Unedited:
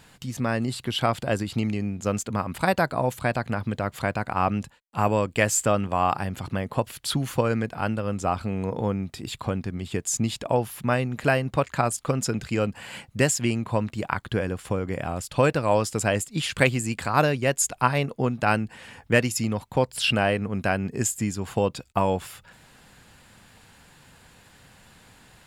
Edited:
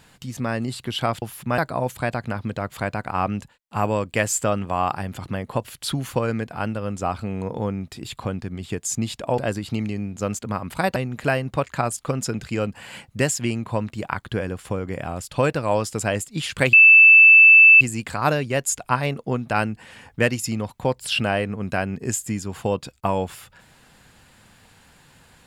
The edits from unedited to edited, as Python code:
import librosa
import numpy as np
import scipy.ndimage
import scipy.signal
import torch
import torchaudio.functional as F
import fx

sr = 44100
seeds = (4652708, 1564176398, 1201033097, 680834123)

y = fx.edit(x, sr, fx.swap(start_s=1.22, length_s=1.58, other_s=10.6, other_length_s=0.36),
    fx.insert_tone(at_s=16.73, length_s=1.08, hz=2640.0, db=-6.5), tone=tone)